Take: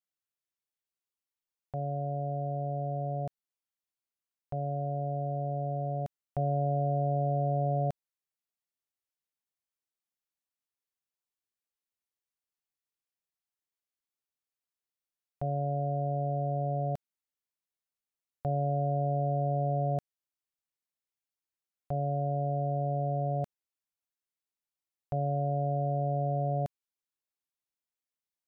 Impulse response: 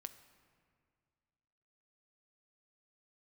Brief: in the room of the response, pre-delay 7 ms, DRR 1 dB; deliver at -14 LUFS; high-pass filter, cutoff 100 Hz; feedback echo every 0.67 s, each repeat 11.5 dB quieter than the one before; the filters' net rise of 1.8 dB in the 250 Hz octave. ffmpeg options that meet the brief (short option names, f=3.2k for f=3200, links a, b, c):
-filter_complex "[0:a]highpass=100,equalizer=f=250:t=o:g=6,aecho=1:1:670|1340|2010:0.266|0.0718|0.0194,asplit=2[a][b];[1:a]atrim=start_sample=2205,adelay=7[c];[b][c]afir=irnorm=-1:irlink=0,volume=4dB[d];[a][d]amix=inputs=2:normalize=0,volume=12.5dB"